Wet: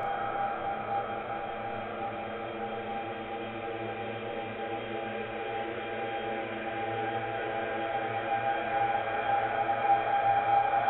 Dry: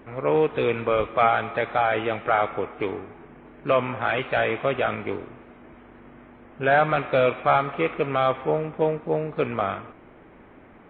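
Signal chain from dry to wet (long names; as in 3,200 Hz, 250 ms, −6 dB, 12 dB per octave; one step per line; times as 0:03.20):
played backwards from end to start
low-shelf EQ 85 Hz +11.5 dB
tuned comb filter 800 Hz, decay 0.42 s, mix 90%
extreme stretch with random phases 28×, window 0.50 s, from 0:08.65
on a send: flutter between parallel walls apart 5.6 metres, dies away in 0.29 s
on the sum: level +7 dB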